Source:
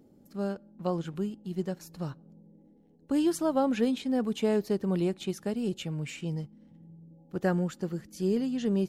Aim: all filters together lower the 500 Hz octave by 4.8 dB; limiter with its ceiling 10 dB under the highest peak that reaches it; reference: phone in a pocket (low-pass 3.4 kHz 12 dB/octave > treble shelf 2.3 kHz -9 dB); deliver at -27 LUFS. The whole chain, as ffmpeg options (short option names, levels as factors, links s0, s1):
-af "equalizer=f=500:t=o:g=-6,alimiter=level_in=1.5:limit=0.0631:level=0:latency=1,volume=0.668,lowpass=3400,highshelf=f=2300:g=-9,volume=3.35"